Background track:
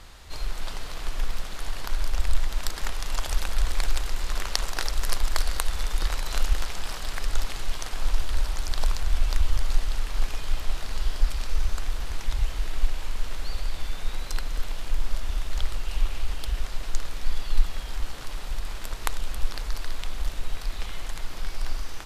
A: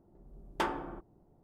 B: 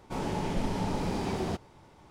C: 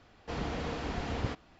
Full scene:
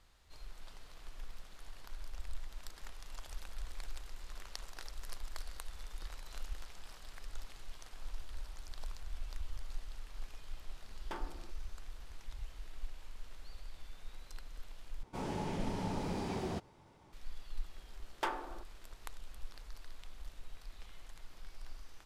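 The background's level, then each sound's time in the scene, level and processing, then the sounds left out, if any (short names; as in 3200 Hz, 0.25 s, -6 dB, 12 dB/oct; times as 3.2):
background track -19.5 dB
10.51 add A -12.5 dB
15.03 replace with B -6.5 dB
17.63 add A -3 dB + HPF 430 Hz
not used: C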